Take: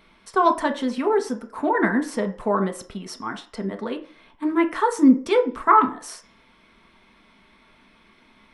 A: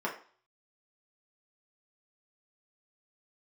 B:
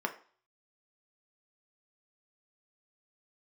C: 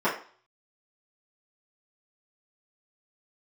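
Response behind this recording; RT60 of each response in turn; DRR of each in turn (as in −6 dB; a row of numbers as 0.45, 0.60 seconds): B; 0.45, 0.45, 0.45 seconds; −4.0, 4.0, −12.5 decibels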